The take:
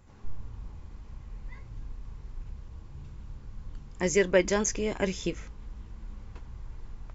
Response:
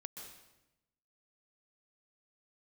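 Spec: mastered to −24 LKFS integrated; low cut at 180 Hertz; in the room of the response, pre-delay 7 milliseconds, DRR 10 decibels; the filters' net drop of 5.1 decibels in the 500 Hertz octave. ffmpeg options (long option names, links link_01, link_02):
-filter_complex "[0:a]highpass=180,equalizer=frequency=500:width_type=o:gain=-6.5,asplit=2[link_01][link_02];[1:a]atrim=start_sample=2205,adelay=7[link_03];[link_02][link_03]afir=irnorm=-1:irlink=0,volume=-6dB[link_04];[link_01][link_04]amix=inputs=2:normalize=0,volume=6.5dB"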